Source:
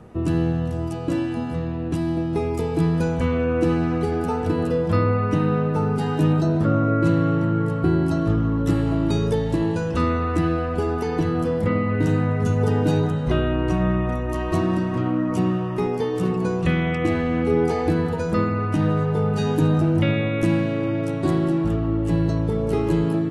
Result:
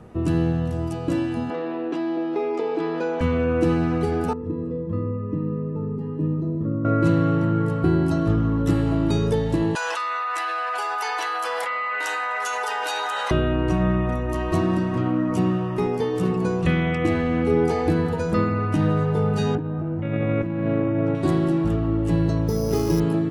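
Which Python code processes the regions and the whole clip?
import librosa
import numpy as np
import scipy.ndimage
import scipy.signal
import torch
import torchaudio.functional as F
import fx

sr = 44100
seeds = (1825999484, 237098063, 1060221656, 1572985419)

y = fx.chain(x, sr, fx.highpass(hz=310.0, slope=24),
    fx.air_absorb(metres=180.0),
    fx.env_flatten(amount_pct=50), at=(1.5, 3.21))
y = fx.chain(y, sr, fx.moving_average(points=59),
    fx.low_shelf(hz=160.0, db=-9.0), at=(4.33, 6.85))
y = fx.chain(y, sr, fx.highpass(hz=840.0, slope=24),
    fx.env_flatten(amount_pct=100), at=(9.75, 13.31))
y = fx.chain(y, sr, fx.lowpass(hz=1700.0, slope=12),
    fx.over_compress(threshold_db=-24.0, ratio=-1.0), at=(19.55, 21.15))
y = fx.chain(y, sr, fx.air_absorb(metres=140.0),
    fx.resample_bad(factor=8, down='none', up='hold'), at=(22.48, 23.0))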